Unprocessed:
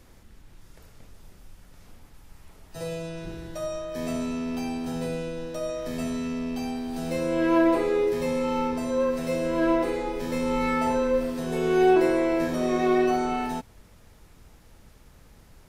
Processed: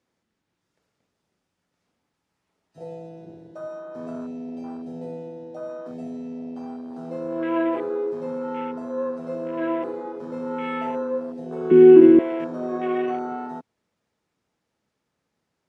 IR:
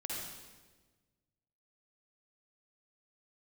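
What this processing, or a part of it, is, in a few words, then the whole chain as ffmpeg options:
over-cleaned archive recording: -filter_complex "[0:a]highpass=180,lowpass=7700,afwtdn=0.0224,asettb=1/sr,asplit=3[link_01][link_02][link_03];[link_01]atrim=end=11.714[link_04];[link_02]atrim=start=11.71:end=12.19,asetpts=PTS-STARTPTS,afade=type=in:duration=0.004:curve=qsin,afade=type=out:start_time=0.476:duration=0.004:curve=qsin,lowshelf=frequency=430:width_type=q:width=3:gain=12.5[link_05];[link_03]atrim=start=12.186[link_06];[link_04][link_05]acrossfade=duration=0.004:curve1=hsin:curve2=qsin[link_07];[link_07][link_06]acrossfade=duration=0.004:curve1=qsin:curve2=hsin,volume=-2.5dB"

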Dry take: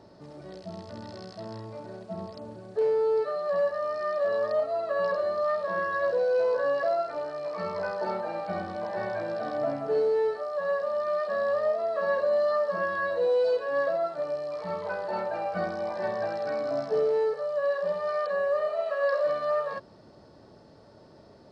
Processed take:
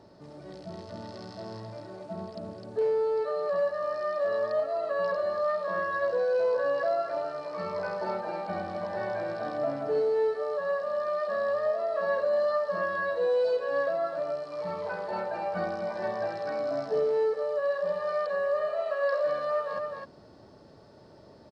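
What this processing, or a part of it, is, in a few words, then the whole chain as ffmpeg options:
ducked delay: -filter_complex "[0:a]asplit=3[link_01][link_02][link_03];[link_02]adelay=257,volume=-4dB[link_04];[link_03]apad=whole_len=959927[link_05];[link_04][link_05]sidechaincompress=threshold=-34dB:ratio=8:attack=40:release=229[link_06];[link_01][link_06]amix=inputs=2:normalize=0,volume=-1.5dB"

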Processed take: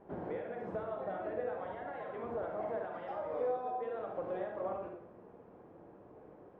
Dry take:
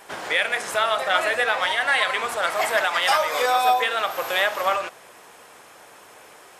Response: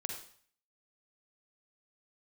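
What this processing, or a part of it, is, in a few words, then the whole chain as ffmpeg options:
television next door: -filter_complex "[0:a]acompressor=threshold=-25dB:ratio=4,lowpass=340[link_01];[1:a]atrim=start_sample=2205[link_02];[link_01][link_02]afir=irnorm=-1:irlink=0,volume=3.5dB"

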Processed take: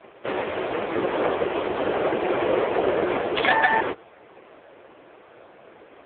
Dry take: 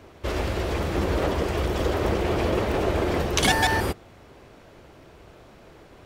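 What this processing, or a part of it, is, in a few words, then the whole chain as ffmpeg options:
telephone: -af "highpass=360,lowpass=3200,volume=7.5dB" -ar 8000 -c:a libopencore_amrnb -b:a 5150

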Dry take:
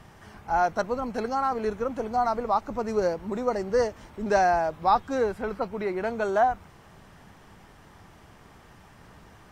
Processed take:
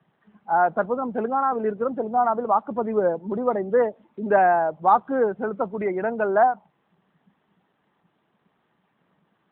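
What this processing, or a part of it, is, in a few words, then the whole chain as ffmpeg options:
mobile call with aggressive noise cancelling: -af "highpass=frequency=150:width=0.5412,highpass=frequency=150:width=1.3066,afftdn=noise_reduction=19:noise_floor=-36,volume=4.5dB" -ar 8000 -c:a libopencore_amrnb -b:a 12200

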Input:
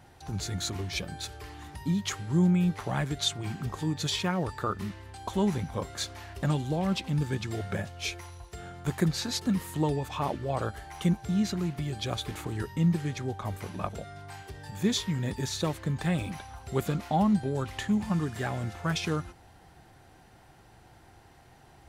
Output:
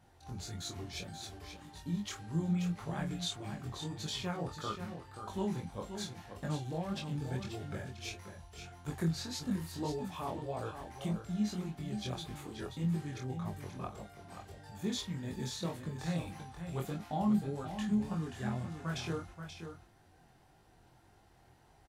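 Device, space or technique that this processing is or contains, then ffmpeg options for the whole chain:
double-tracked vocal: -filter_complex "[0:a]asplit=2[link_01][link_02];[link_02]adelay=24,volume=-7dB[link_03];[link_01][link_03]amix=inputs=2:normalize=0,flanger=delay=19:depth=5:speed=1.7,asettb=1/sr,asplit=3[link_04][link_05][link_06];[link_04]atrim=end=18.274[link_07];[link_05]atrim=start=18.27:end=18.86,asetpts=PTS-STARTPTS,afade=type=in:duration=0.004:curve=qsin,afade=type=out:start_time=0.586:duration=0.004:curve=qsin,lowpass=12000[link_08];[link_06]atrim=start=18.856[link_09];[link_07][link_08]acrossfade=duration=0.004:curve1=hsin:curve2=qsin[link_10];[link_10][link_09]acrossfade=duration=0.004:curve1=qsin:curve2=hsin,equalizer=frequency=2100:width=1.5:gain=-2,aecho=1:1:531:0.376,volume=-6.5dB"

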